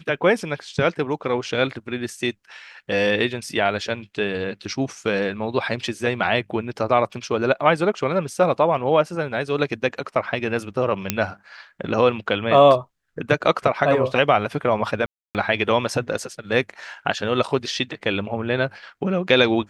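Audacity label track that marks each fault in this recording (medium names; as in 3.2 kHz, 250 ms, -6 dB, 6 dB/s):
11.100000	11.100000	pop -2 dBFS
15.060000	15.350000	dropout 288 ms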